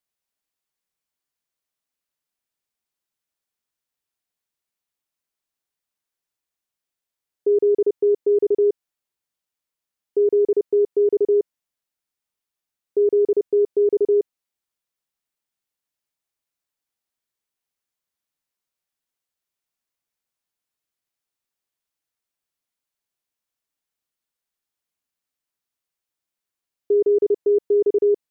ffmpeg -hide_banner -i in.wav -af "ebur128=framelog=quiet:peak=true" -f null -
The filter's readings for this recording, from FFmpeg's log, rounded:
Integrated loudness:
  I:         -19.9 LUFS
  Threshold: -30.1 LUFS
Loudness range:
  LRA:         5.6 LU
  Threshold: -43.2 LUFS
  LRA low:   -27.4 LUFS
  LRA high:  -21.8 LUFS
True peak:
  Peak:      -12.9 dBFS